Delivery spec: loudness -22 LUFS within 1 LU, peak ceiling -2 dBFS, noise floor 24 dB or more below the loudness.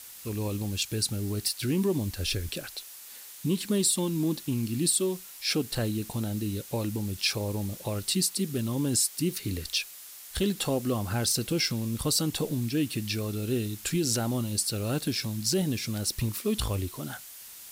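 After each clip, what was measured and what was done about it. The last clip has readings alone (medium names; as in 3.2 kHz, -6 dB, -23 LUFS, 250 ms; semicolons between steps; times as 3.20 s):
noise floor -46 dBFS; noise floor target -53 dBFS; loudness -29.0 LUFS; peak level -12.5 dBFS; loudness target -22.0 LUFS
-> noise reduction 7 dB, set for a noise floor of -46 dBFS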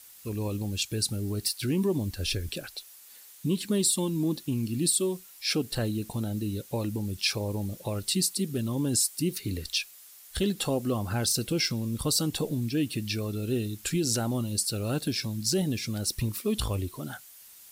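noise floor -51 dBFS; noise floor target -53 dBFS
-> noise reduction 6 dB, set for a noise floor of -51 dBFS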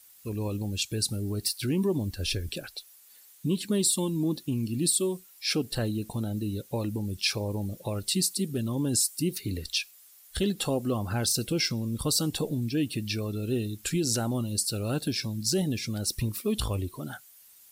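noise floor -55 dBFS; loudness -29.0 LUFS; peak level -12.5 dBFS; loudness target -22.0 LUFS
-> trim +7 dB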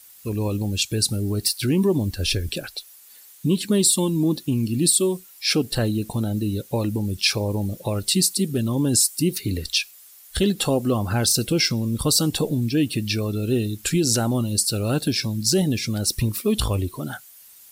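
loudness -22.0 LUFS; peak level -5.5 dBFS; noise floor -48 dBFS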